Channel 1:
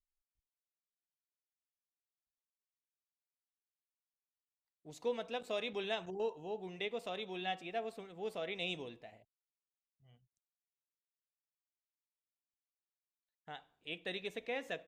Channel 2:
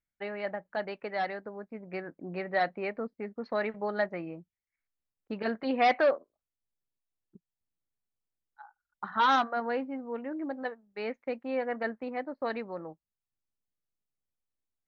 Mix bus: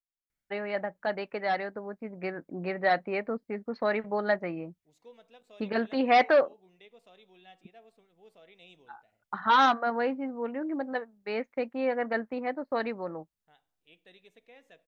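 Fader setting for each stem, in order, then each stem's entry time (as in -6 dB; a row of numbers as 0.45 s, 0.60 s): -15.5 dB, +3.0 dB; 0.00 s, 0.30 s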